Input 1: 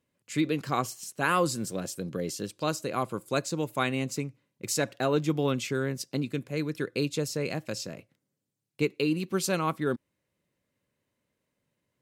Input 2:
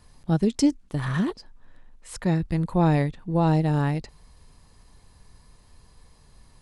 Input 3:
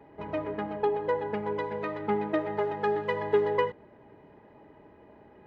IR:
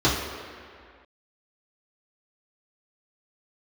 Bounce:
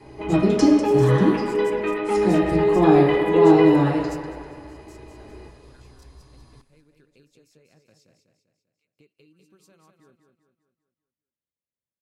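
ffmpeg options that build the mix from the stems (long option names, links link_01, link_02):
-filter_complex "[0:a]lowshelf=frequency=150:gain=10.5,acompressor=threshold=-29dB:ratio=6,volume=-2dB,asplit=2[link_01][link_02];[link_02]volume=-22dB[link_03];[1:a]flanger=delay=8.5:depth=3.1:regen=58:speed=1.4:shape=triangular,volume=-2.5dB,asplit=4[link_04][link_05][link_06][link_07];[link_05]volume=-8dB[link_08];[link_06]volume=-5dB[link_09];[2:a]equalizer=frequency=2600:width=2:gain=14,acompressor=threshold=-33dB:ratio=1.5,volume=-6dB,asplit=2[link_10][link_11];[link_11]volume=-6dB[link_12];[link_07]apad=whole_len=529810[link_13];[link_01][link_13]sidechaingate=range=-33dB:threshold=-52dB:ratio=16:detection=peak[link_14];[link_14][link_10]amix=inputs=2:normalize=0,highpass=1300,acompressor=threshold=-43dB:ratio=6,volume=0dB[link_15];[3:a]atrim=start_sample=2205[link_16];[link_08][link_12]amix=inputs=2:normalize=0[link_17];[link_17][link_16]afir=irnorm=-1:irlink=0[link_18];[link_03][link_09]amix=inputs=2:normalize=0,aecho=0:1:197|394|591|788|985|1182|1379:1|0.47|0.221|0.104|0.0488|0.0229|0.0108[link_19];[link_04][link_15][link_18][link_19]amix=inputs=4:normalize=0,equalizer=frequency=130:width=0.89:gain=-4.5"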